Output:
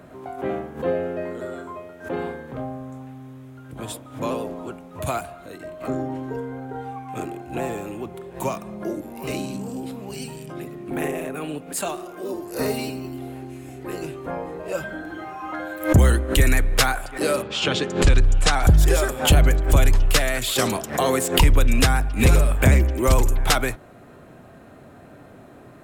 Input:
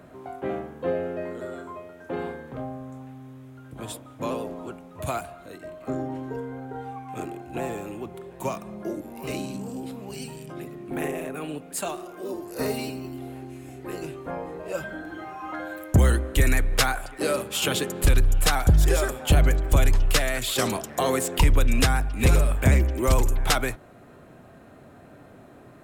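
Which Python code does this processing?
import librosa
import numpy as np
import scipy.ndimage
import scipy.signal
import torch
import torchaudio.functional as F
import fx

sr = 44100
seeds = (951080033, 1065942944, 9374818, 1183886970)

y = fx.lowpass(x, sr, hz=fx.line((17.41, 5100.0), (18.63, 9100.0)), slope=24, at=(17.41, 18.63), fade=0.02)
y = fx.pre_swell(y, sr, db_per_s=150.0)
y = y * librosa.db_to_amplitude(3.0)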